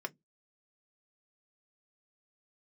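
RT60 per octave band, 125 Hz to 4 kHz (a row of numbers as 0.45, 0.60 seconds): 0.25, 0.25, 0.15, 0.10, 0.10, 0.10 seconds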